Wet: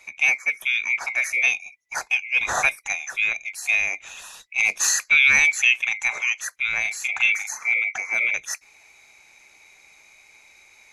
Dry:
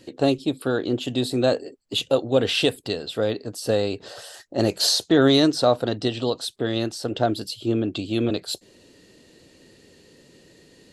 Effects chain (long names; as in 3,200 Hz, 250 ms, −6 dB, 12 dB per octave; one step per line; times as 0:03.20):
neighbouring bands swapped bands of 2,000 Hz
0:01.48–0:02.48: parametric band 1,600 Hz −4.5 dB 1.7 octaves
0:06.81–0:07.74: double-tracking delay 39 ms −3.5 dB